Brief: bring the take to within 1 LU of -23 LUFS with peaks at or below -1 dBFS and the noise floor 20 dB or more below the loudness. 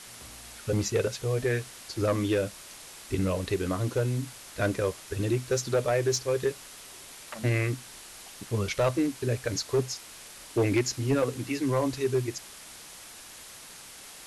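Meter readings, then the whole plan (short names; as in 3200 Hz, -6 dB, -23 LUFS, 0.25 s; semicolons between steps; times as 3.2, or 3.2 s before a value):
clipped 0.6%; flat tops at -18.5 dBFS; noise floor -47 dBFS; noise floor target -49 dBFS; loudness -29.0 LUFS; peak -18.5 dBFS; loudness target -23.0 LUFS
-> clip repair -18.5 dBFS; denoiser 6 dB, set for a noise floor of -47 dBFS; gain +6 dB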